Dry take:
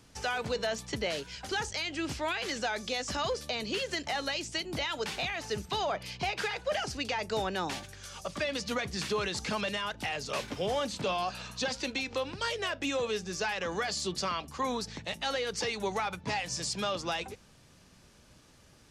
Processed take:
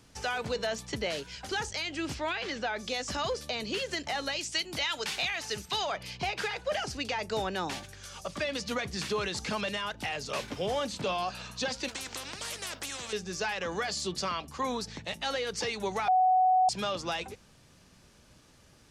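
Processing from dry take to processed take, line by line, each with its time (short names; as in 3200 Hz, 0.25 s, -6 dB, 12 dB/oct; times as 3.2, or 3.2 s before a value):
2.14–2.78 LPF 7600 Hz -> 3000 Hz
4.39–5.98 tilt shelf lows -5 dB, about 1100 Hz
11.88–13.13 spectral compressor 4:1
16.08–16.69 bleep 744 Hz -20 dBFS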